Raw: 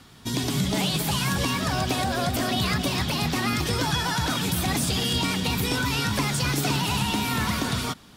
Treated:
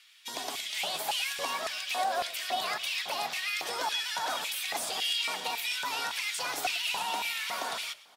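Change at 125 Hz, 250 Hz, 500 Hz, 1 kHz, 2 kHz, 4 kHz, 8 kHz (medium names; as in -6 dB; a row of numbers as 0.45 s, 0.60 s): under -35 dB, -26.5 dB, -8.0 dB, -4.5 dB, -4.0 dB, -4.0 dB, -6.5 dB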